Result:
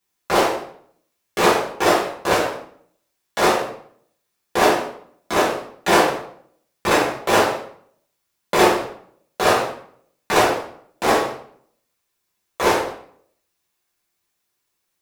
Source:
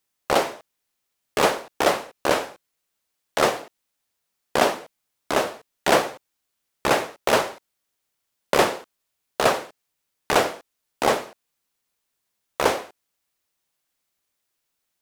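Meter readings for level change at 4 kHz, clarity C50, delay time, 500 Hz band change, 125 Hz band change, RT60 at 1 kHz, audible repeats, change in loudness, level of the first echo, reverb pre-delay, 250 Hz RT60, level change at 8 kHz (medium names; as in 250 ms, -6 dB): +3.0 dB, 4.5 dB, no echo, +3.5 dB, +5.0 dB, 0.60 s, no echo, +3.5 dB, no echo, 3 ms, 0.70 s, +3.0 dB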